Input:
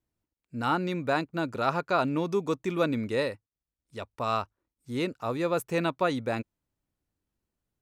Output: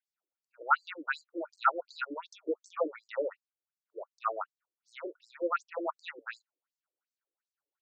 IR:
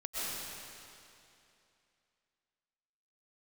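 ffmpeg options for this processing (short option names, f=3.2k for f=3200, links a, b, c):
-af "equalizer=f=1.4k:w=2.3:g=12.5,afftfilt=real='re*between(b*sr/1024,410*pow(6200/410,0.5+0.5*sin(2*PI*2.7*pts/sr))/1.41,410*pow(6200/410,0.5+0.5*sin(2*PI*2.7*pts/sr))*1.41)':imag='im*between(b*sr/1024,410*pow(6200/410,0.5+0.5*sin(2*PI*2.7*pts/sr))/1.41,410*pow(6200/410,0.5+0.5*sin(2*PI*2.7*pts/sr))*1.41)':win_size=1024:overlap=0.75,volume=-2.5dB"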